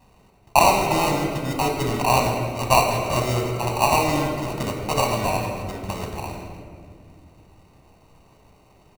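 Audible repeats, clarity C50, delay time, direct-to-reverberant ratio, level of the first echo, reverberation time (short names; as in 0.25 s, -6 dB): 1, 3.5 dB, 0.162 s, 1.5 dB, -15.0 dB, 2.2 s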